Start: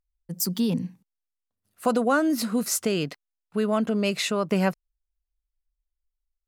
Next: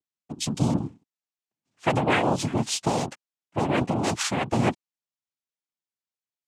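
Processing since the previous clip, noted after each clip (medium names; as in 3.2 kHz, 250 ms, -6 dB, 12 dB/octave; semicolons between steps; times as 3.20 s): noise-vocoded speech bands 4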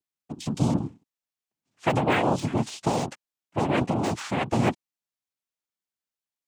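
de-esser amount 80%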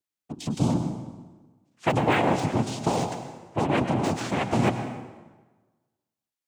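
plate-style reverb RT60 1.3 s, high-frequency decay 0.75×, pre-delay 90 ms, DRR 8 dB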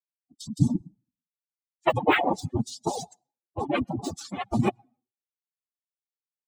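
expander on every frequency bin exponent 3; reverb removal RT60 0.5 s; trim +6.5 dB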